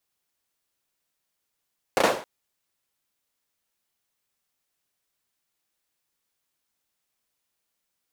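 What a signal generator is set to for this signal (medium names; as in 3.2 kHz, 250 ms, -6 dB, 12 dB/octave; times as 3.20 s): hand clap length 0.27 s, bursts 3, apart 33 ms, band 550 Hz, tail 0.43 s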